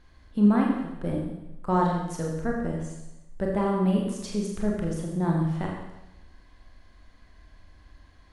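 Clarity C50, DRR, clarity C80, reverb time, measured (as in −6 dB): 2.5 dB, −1.5 dB, 4.5 dB, 0.95 s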